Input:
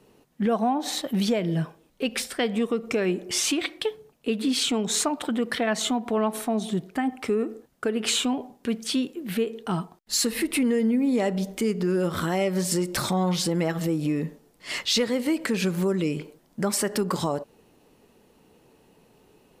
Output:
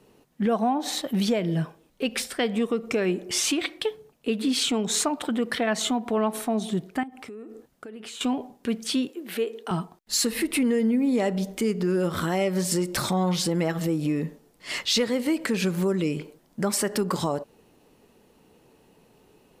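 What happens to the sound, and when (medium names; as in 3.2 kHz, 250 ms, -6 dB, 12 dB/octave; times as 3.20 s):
7.03–8.21 s: compression, threshold -38 dBFS
9.09–9.71 s: high-pass 280 Hz 24 dB/octave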